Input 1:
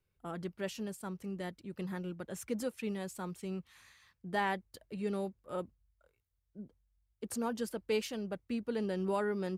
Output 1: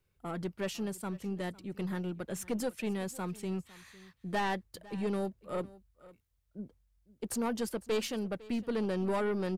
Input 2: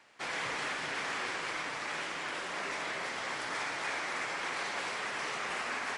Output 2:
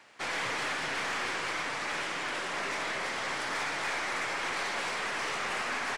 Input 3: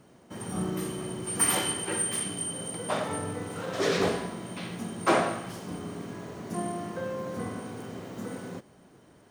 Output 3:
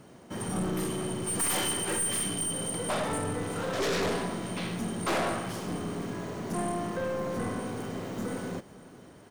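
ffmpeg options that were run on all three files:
-af "aeval=exprs='(tanh(35.5*val(0)+0.25)-tanh(0.25))/35.5':c=same,aecho=1:1:504:0.0944,volume=5dB"

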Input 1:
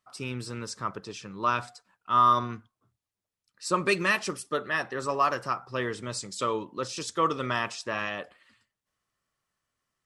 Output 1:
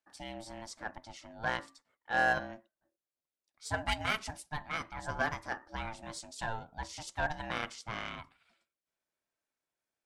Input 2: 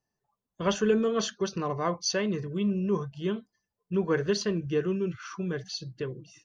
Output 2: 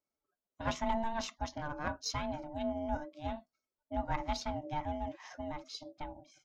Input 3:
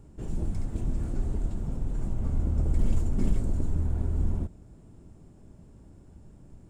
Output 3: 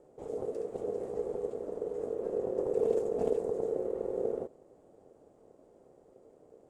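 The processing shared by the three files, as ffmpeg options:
-af "aeval=exprs='0.299*(cos(1*acos(clip(val(0)/0.299,-1,1)))-cos(1*PI/2))+0.0335*(cos(2*acos(clip(val(0)/0.299,-1,1)))-cos(2*PI/2))+0.0106*(cos(6*acos(clip(val(0)/0.299,-1,1)))-cos(6*PI/2))+0.00596*(cos(7*acos(clip(val(0)/0.299,-1,1)))-cos(7*PI/2))+0.0133*(cos(8*acos(clip(val(0)/0.299,-1,1)))-cos(8*PI/2))':c=same,aeval=exprs='val(0)*sin(2*PI*450*n/s)':c=same,volume=-5dB"

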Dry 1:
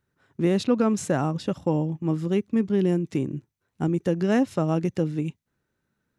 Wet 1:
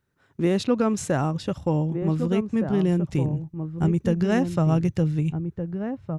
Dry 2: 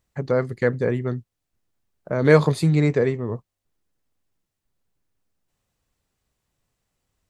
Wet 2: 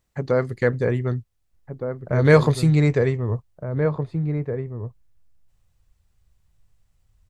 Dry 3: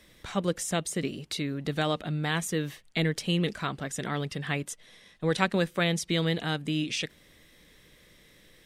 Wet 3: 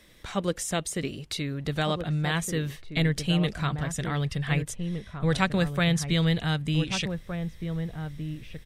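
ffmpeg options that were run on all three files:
-filter_complex "[0:a]asubboost=boost=8.5:cutoff=100,asplit=2[a][b];[b]adelay=1516,volume=-7dB,highshelf=f=4k:g=-34.1[c];[a][c]amix=inputs=2:normalize=0,volume=1dB"

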